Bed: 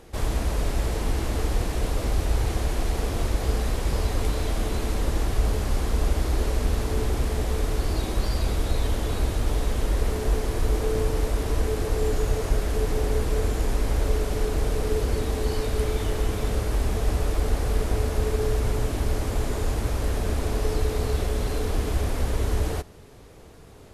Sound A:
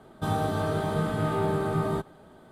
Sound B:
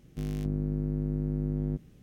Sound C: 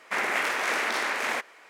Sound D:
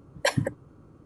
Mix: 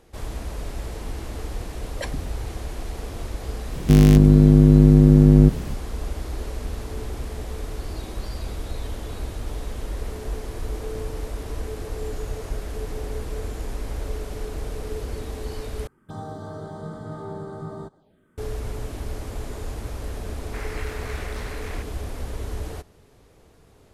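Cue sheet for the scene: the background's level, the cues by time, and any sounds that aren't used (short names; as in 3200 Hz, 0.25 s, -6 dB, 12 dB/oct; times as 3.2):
bed -6.5 dB
1.76 add D -8.5 dB + stuck buffer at 0.42
3.72 add B -2 dB + maximiser +23.5 dB
15.87 replace with A -7.5 dB + envelope phaser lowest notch 560 Hz, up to 2600 Hz, full sweep at -30.5 dBFS
20.42 add C -12.5 dB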